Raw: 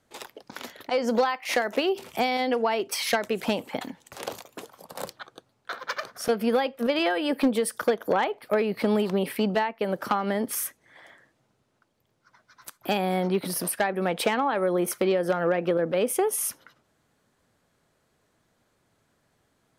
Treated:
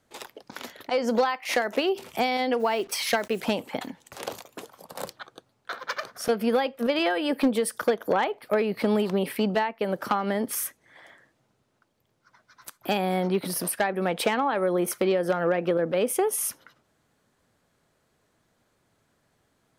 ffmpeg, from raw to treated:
-filter_complex "[0:a]asplit=3[a][b][c];[a]afade=t=out:st=2.59:d=0.02[d];[b]acrusher=bits=7:mix=0:aa=0.5,afade=t=in:st=2.59:d=0.02,afade=t=out:st=3.38:d=0.02[e];[c]afade=t=in:st=3.38:d=0.02[f];[d][e][f]amix=inputs=3:normalize=0"

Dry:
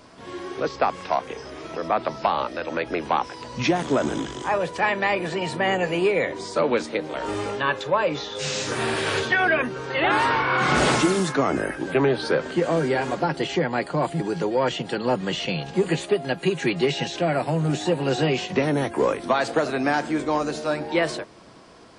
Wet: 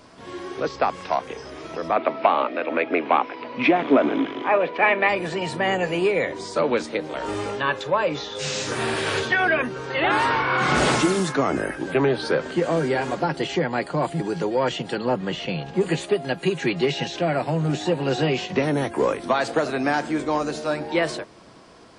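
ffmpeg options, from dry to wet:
-filter_complex "[0:a]asettb=1/sr,asplit=3[a][b][c];[a]atrim=end=1.964[d];[b]atrim=start=1.96:end=5.09,asetpts=PTS-STARTPTS,afade=t=in:d=0.004:c=qsin,afade=t=out:st=3.126:d=0.004:c=qsin,highpass=240,equalizer=f=270:t=q:w=4:g=10,equalizer=f=430:t=q:w=4:g=4,equalizer=f=660:t=q:w=4:g=6,equalizer=f=1.2k:t=q:w=4:g=4,equalizer=f=2.3k:t=q:w=4:g=9,lowpass=f=3.5k:w=0.5412,lowpass=f=3.5k:w=1.3066[e];[c]atrim=start=5.086[f];[d][e]acrossfade=d=0.004:c1=hsin:c2=qsin[g];[g][f]acrossfade=d=0.004:c1=qsin:c2=hsin,asettb=1/sr,asplit=3[h][i][j];[h]atrim=end=15.044[k];[i]atrim=start=15.04:end=15.81,asetpts=PTS-STARTPTS,afade=t=in:d=0.004:c=qsin,afade=t=out:st=0.766:d=0.004:c=qsin,highshelf=f=4.1k:g=-10[l];[j]atrim=start=15.806[m];[k][l]acrossfade=d=0.004:c1=hsin:c2=qsin[n];[n][m]acrossfade=d=0.004:c1=qsin:c2=hsin,asettb=1/sr,asplit=3[o][p][q];[o]atrim=end=16.584[r];[p]atrim=start=16.58:end=18.58,asetpts=PTS-STARTPTS,afade=t=in:d=0.004:c=qsin,afade=t=out:st=1.996:d=0.004:c=qsin,lowpass=7.3k[s];[q]atrim=start=18.576[t];[r][s]acrossfade=d=0.004:c1=hsin:c2=qsin[u];[u][t]acrossfade=d=0.004:c1=qsin:c2=hsin"

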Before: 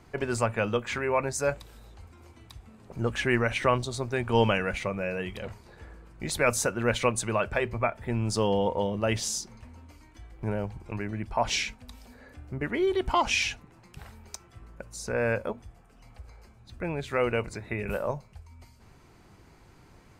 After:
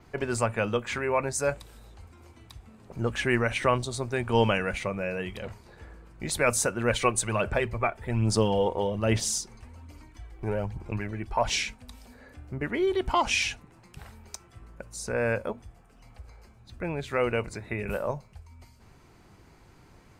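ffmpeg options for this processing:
-filter_complex "[0:a]asplit=3[a][b][c];[a]afade=t=out:st=6.89:d=0.02[d];[b]aphaser=in_gain=1:out_gain=1:delay=2.7:decay=0.42:speed=1.2:type=sinusoidal,afade=t=in:st=6.89:d=0.02,afade=t=out:st=11.49:d=0.02[e];[c]afade=t=in:st=11.49:d=0.02[f];[d][e][f]amix=inputs=3:normalize=0,adynamicequalizer=threshold=0.00282:dfrequency=8900:dqfactor=2.5:tfrequency=8900:tqfactor=2.5:attack=5:release=100:ratio=0.375:range=2.5:mode=boostabove:tftype=bell"

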